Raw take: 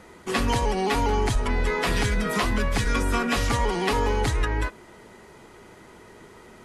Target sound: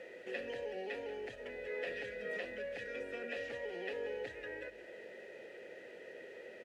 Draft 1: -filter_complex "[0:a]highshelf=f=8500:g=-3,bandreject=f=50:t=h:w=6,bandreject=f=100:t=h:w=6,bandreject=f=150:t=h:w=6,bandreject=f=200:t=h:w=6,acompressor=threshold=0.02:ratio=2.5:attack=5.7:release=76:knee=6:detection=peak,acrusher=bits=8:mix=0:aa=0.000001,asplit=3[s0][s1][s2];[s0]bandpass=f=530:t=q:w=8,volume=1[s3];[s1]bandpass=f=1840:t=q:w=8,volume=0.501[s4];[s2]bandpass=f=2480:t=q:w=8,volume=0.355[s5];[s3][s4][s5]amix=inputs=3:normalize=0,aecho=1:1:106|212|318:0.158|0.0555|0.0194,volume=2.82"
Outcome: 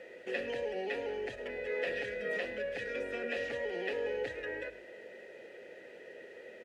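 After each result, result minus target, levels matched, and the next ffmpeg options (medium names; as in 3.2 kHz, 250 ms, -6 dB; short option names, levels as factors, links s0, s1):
echo 73 ms early; compression: peak gain reduction -5.5 dB
-filter_complex "[0:a]highshelf=f=8500:g=-3,bandreject=f=50:t=h:w=6,bandreject=f=100:t=h:w=6,bandreject=f=150:t=h:w=6,bandreject=f=200:t=h:w=6,acompressor=threshold=0.02:ratio=2.5:attack=5.7:release=76:knee=6:detection=peak,acrusher=bits=8:mix=0:aa=0.000001,asplit=3[s0][s1][s2];[s0]bandpass=f=530:t=q:w=8,volume=1[s3];[s1]bandpass=f=1840:t=q:w=8,volume=0.501[s4];[s2]bandpass=f=2480:t=q:w=8,volume=0.355[s5];[s3][s4][s5]amix=inputs=3:normalize=0,aecho=1:1:179|358|537:0.158|0.0555|0.0194,volume=2.82"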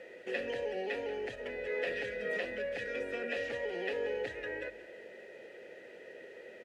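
compression: peak gain reduction -5.5 dB
-filter_complex "[0:a]highshelf=f=8500:g=-3,bandreject=f=50:t=h:w=6,bandreject=f=100:t=h:w=6,bandreject=f=150:t=h:w=6,bandreject=f=200:t=h:w=6,acompressor=threshold=0.00708:ratio=2.5:attack=5.7:release=76:knee=6:detection=peak,acrusher=bits=8:mix=0:aa=0.000001,asplit=3[s0][s1][s2];[s0]bandpass=f=530:t=q:w=8,volume=1[s3];[s1]bandpass=f=1840:t=q:w=8,volume=0.501[s4];[s2]bandpass=f=2480:t=q:w=8,volume=0.355[s5];[s3][s4][s5]amix=inputs=3:normalize=0,aecho=1:1:179|358|537:0.158|0.0555|0.0194,volume=2.82"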